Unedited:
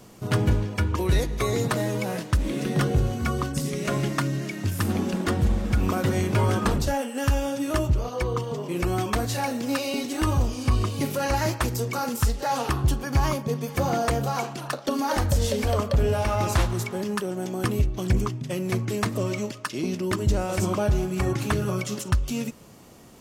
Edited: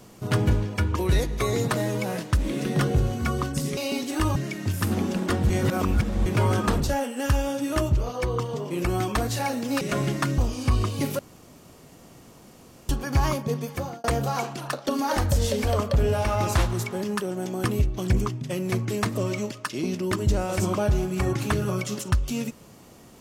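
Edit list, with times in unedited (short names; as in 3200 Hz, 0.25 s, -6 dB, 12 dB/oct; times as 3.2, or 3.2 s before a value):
3.77–4.34 swap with 9.79–10.38
5.48–6.24 reverse
11.19–12.89 room tone
13.58–14.04 fade out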